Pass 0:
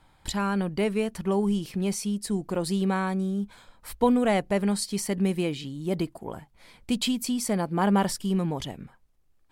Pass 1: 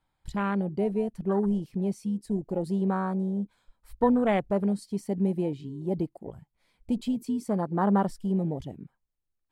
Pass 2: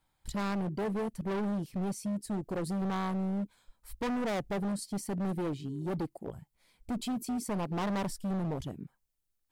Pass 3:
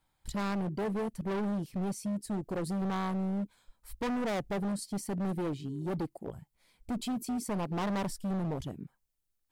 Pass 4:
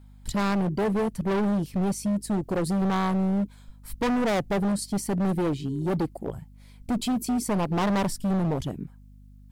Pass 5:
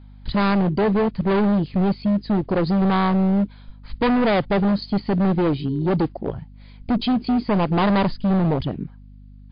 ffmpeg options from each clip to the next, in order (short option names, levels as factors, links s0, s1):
-af "afwtdn=0.0355,volume=0.891"
-af "highshelf=f=4800:g=9,asoftclip=type=hard:threshold=0.0299"
-af anull
-af "aeval=exprs='val(0)+0.00158*(sin(2*PI*50*n/s)+sin(2*PI*2*50*n/s)/2+sin(2*PI*3*50*n/s)/3+sin(2*PI*4*50*n/s)/4+sin(2*PI*5*50*n/s)/5)':c=same,volume=2.51"
-af "volume=2.11" -ar 11025 -c:a libmp3lame -b:a 40k